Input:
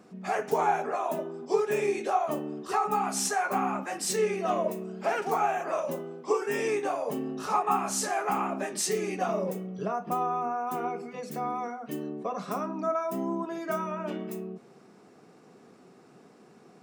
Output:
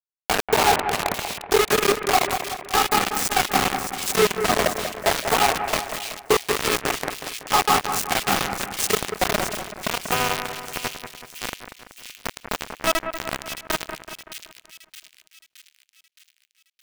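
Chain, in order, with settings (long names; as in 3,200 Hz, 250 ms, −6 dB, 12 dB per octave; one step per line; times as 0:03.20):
bit reduction 4 bits
echo with a time of its own for lows and highs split 2,300 Hz, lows 189 ms, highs 618 ms, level −8 dB
level +6 dB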